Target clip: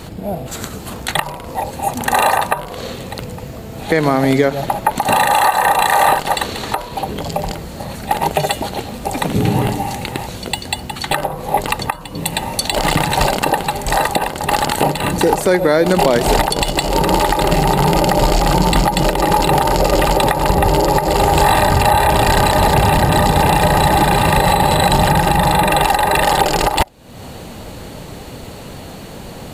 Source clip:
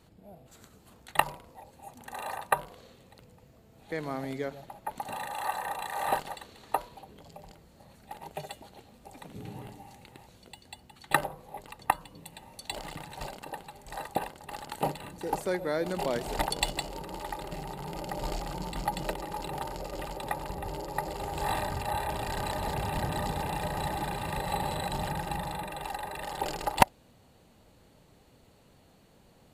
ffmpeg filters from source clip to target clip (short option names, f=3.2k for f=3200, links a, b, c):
-af "acompressor=threshold=-37dB:ratio=6,alimiter=level_in=29dB:limit=-1dB:release=50:level=0:latency=1,volume=-1dB"